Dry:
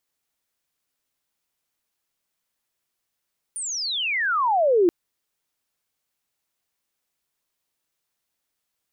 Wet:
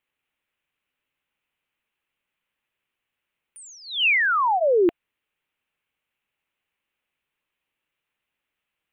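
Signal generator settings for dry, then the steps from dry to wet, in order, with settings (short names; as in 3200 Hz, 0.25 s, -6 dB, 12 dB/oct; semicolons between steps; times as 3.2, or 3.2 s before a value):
chirp logarithmic 9500 Hz -> 330 Hz -27.5 dBFS -> -13.5 dBFS 1.33 s
resonant high shelf 3700 Hz -11 dB, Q 3; notch 690 Hz, Q 12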